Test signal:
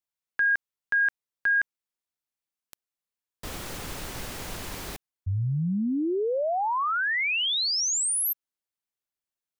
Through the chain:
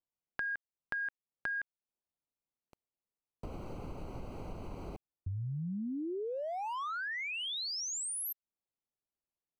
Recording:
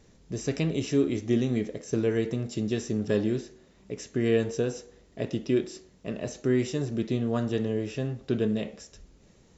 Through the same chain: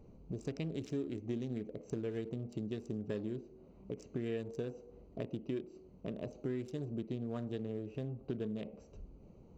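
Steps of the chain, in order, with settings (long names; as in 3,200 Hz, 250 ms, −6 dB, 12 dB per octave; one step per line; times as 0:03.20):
adaptive Wiener filter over 25 samples
downward compressor 3 to 1, threshold −42 dBFS
level +1.5 dB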